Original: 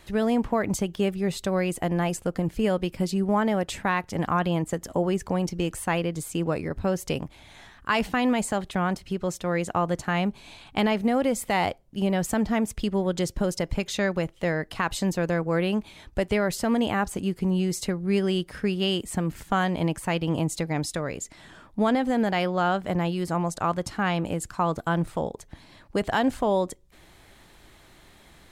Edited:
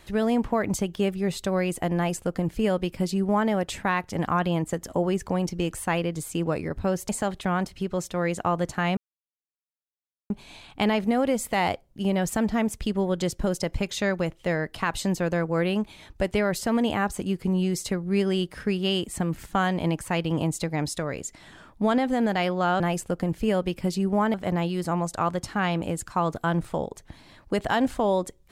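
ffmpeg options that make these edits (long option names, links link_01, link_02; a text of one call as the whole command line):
ffmpeg -i in.wav -filter_complex "[0:a]asplit=5[link_01][link_02][link_03][link_04][link_05];[link_01]atrim=end=7.092[link_06];[link_02]atrim=start=8.388:end=10.27,asetpts=PTS-STARTPTS,afade=type=out:start_time=1.878:duration=0.004:curve=hsin,apad=pad_dur=1.33[link_07];[link_03]atrim=start=10.27:end=22.772,asetpts=PTS-STARTPTS,afade=type=in:duration=0.004:curve=hsin[link_08];[link_04]atrim=start=1.958:end=3.502[link_09];[link_05]atrim=start=22.768[link_10];[link_07][link_08]concat=n=2:v=0:a=1[link_11];[link_06][link_11]acrossfade=duration=0.004:curve1=hsin:curve2=hsin[link_12];[link_12][link_09]acrossfade=duration=0.004:curve1=hsin:curve2=hsin[link_13];[link_13][link_10]acrossfade=duration=0.004:curve1=hsin:curve2=hsin" out.wav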